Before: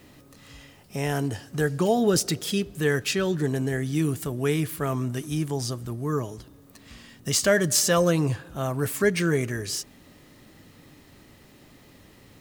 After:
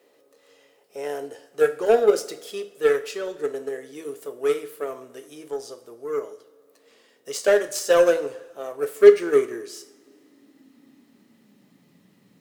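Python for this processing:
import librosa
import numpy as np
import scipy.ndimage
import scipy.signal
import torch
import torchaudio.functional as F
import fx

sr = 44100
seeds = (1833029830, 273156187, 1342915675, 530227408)

y = fx.filter_sweep_highpass(x, sr, from_hz=470.0, to_hz=180.0, start_s=8.78, end_s=11.85, q=5.1)
y = fx.cheby_harmonics(y, sr, harmonics=(7,), levels_db=(-22,), full_scale_db=-1.0)
y = fx.rev_double_slope(y, sr, seeds[0], early_s=0.44, late_s=1.8, knee_db=-18, drr_db=7.5)
y = y * 10.0 ** (-4.0 / 20.0)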